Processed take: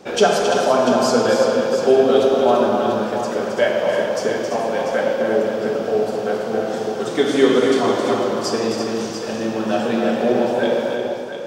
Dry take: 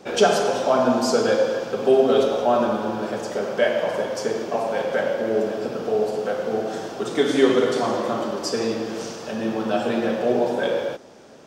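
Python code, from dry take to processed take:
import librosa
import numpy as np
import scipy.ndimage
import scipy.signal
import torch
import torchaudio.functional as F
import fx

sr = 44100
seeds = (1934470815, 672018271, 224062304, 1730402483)

y = fx.echo_multitap(x, sr, ms=(268, 338, 691), db=(-7.0, -8.0, -9.0))
y = F.gain(torch.from_numpy(y), 2.0).numpy()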